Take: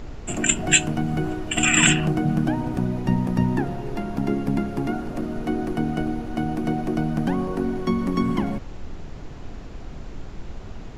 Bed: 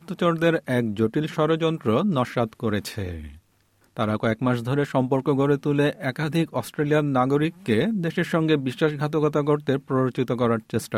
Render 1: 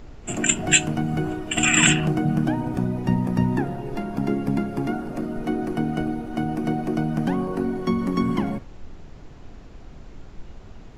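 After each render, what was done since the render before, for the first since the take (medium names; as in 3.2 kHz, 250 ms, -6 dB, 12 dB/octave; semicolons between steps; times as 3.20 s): noise print and reduce 6 dB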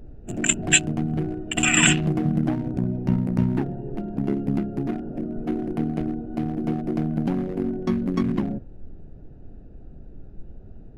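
local Wiener filter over 41 samples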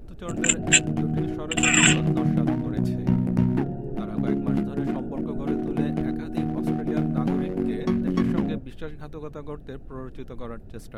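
add bed -15.5 dB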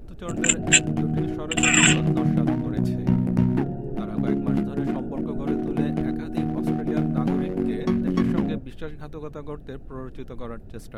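trim +1 dB; peak limiter -2 dBFS, peak gain reduction 1.5 dB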